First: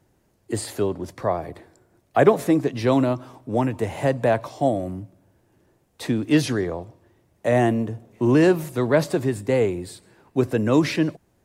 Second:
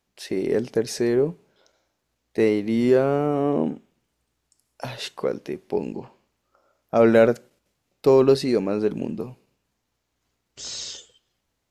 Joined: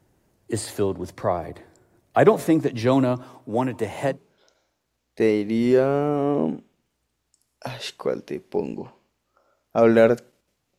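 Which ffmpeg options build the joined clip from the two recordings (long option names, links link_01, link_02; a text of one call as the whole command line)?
ffmpeg -i cue0.wav -i cue1.wav -filter_complex "[0:a]asettb=1/sr,asplit=3[link_01][link_02][link_03];[link_01]atrim=end=3.234[link_04];[link_02]atrim=start=3.23:end=4.19,asetpts=PTS-STARTPTS,afade=type=in:duration=0.004:curve=qsin,afade=type=out:start_time=0.956:duration=0.004:curve=qsin,highpass=frequency=180:poles=1[link_05];[link_03]atrim=start=4.186[link_06];[link_04][link_05]acrossfade=duration=0.004:curve1=hsin:curve2=qsin[link_07];[link_07][link_06]acrossfade=duration=0.004:curve1=qsin:curve2=hsin,apad=whole_dur=10.78,atrim=end=10.78,atrim=end=4.19,asetpts=PTS-STARTPTS[link_08];[1:a]atrim=start=1.23:end=7.96,asetpts=PTS-STARTPTS[link_09];[link_08][link_09]acrossfade=duration=0.14:curve1=tri:curve2=tri" out.wav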